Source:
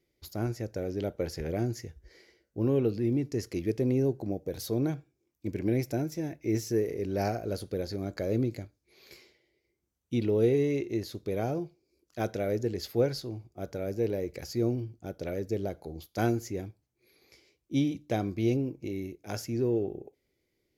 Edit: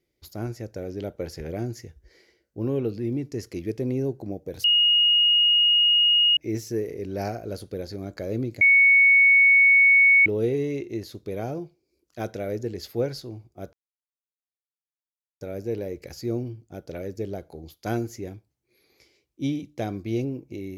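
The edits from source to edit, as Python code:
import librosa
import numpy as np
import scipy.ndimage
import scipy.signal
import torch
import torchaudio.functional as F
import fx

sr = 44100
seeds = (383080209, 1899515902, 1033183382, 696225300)

y = fx.edit(x, sr, fx.bleep(start_s=4.64, length_s=1.73, hz=2870.0, db=-15.5),
    fx.bleep(start_s=8.61, length_s=1.65, hz=2220.0, db=-12.5),
    fx.insert_silence(at_s=13.73, length_s=1.68), tone=tone)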